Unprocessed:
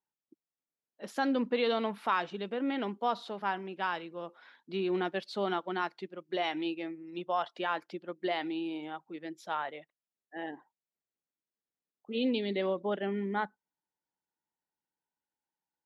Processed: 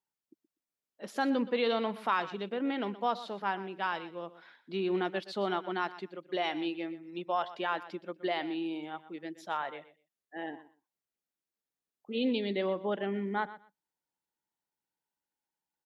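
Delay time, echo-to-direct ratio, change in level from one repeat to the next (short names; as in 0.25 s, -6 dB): 0.122 s, -15.5 dB, -15.5 dB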